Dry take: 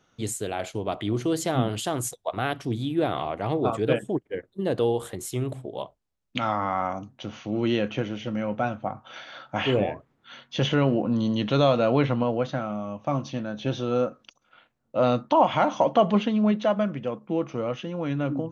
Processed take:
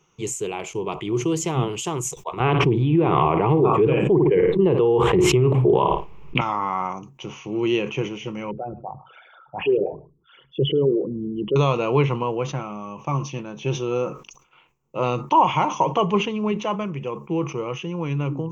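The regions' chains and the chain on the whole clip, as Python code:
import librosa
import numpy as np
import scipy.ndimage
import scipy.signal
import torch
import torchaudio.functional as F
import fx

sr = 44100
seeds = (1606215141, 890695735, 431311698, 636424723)

y = fx.chain(x, sr, fx.air_absorb(metres=460.0),
    fx.room_flutter(wall_m=9.5, rt60_s=0.23),
    fx.env_flatten(amount_pct=100), at=(2.4, 6.41))
y = fx.chain(y, sr, fx.envelope_sharpen(power=3.0),
    fx.spacing_loss(db_at_10k=23),
    fx.echo_single(ms=105, db=-21.5), at=(8.51, 11.56))
y = fx.ripple_eq(y, sr, per_octave=0.74, db=14)
y = fx.sustainer(y, sr, db_per_s=130.0)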